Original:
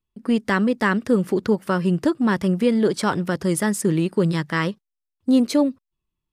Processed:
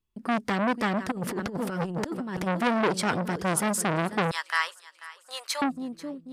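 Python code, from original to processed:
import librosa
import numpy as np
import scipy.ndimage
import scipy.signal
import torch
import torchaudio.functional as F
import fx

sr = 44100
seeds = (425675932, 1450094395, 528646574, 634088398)

y = fx.echo_feedback(x, sr, ms=489, feedback_pct=46, wet_db=-18.0)
y = fx.over_compress(y, sr, threshold_db=-25.0, ratio=-0.5, at=(1.1, 2.46), fade=0.02)
y = fx.cheby2_highpass(y, sr, hz=250.0, order=4, stop_db=60, at=(4.31, 5.62))
y = fx.transformer_sat(y, sr, knee_hz=1700.0)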